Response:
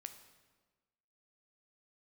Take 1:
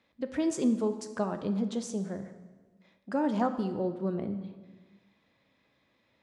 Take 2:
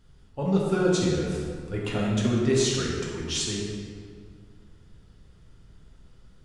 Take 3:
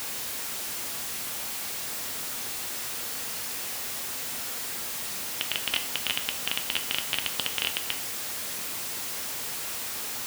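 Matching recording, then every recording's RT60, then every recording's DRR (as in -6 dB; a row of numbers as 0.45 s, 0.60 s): 1; 1.3 s, 2.0 s, 0.45 s; 8.0 dB, -4.5 dB, 6.5 dB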